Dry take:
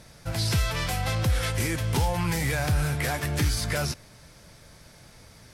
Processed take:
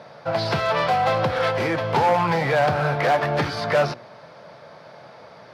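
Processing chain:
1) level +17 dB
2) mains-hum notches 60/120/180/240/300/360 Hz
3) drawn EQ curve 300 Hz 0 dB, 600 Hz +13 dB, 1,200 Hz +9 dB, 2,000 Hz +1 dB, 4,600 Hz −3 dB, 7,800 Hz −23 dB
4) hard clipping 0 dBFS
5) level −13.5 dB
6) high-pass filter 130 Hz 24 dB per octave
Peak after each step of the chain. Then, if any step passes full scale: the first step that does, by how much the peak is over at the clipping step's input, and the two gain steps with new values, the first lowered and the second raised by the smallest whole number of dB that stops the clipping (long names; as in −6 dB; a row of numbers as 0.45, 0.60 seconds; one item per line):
+1.5, +3.0, +8.0, 0.0, −13.5, −8.0 dBFS
step 1, 8.0 dB
step 1 +9 dB, step 5 −5.5 dB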